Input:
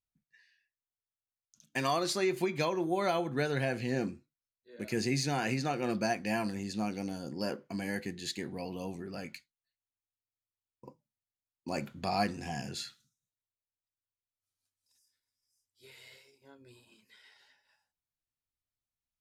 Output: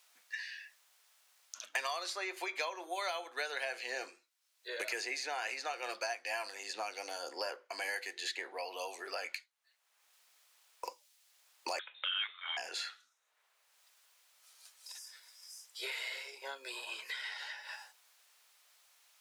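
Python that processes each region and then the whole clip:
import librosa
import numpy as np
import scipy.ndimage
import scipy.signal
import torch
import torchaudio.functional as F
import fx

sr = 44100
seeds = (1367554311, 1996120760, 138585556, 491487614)

y = fx.chain(x, sr, fx.highpass(hz=600.0, slope=12),
    fx.freq_invert(carrier_hz=3900), at=(11.79, 12.57))
y = scipy.signal.sosfilt(scipy.signal.bessel(6, 820.0, 'highpass', norm='mag', fs=sr, output='sos'), y)
y = fx.high_shelf(y, sr, hz=11000.0, db=-8.0)
y = fx.band_squash(y, sr, depth_pct=100)
y = y * librosa.db_to_amplitude(1.0)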